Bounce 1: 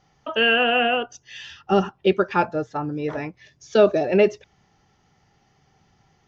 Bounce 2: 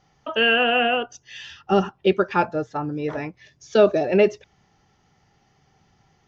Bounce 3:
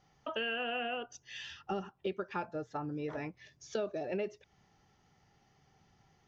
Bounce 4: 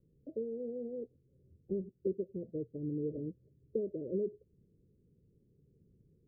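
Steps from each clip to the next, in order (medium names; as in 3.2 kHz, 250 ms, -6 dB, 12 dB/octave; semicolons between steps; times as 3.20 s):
no audible change
compression 4:1, threshold -29 dBFS, peak gain reduction 15.5 dB; trim -6.5 dB
steep low-pass 510 Hz 72 dB/octave; trim +2.5 dB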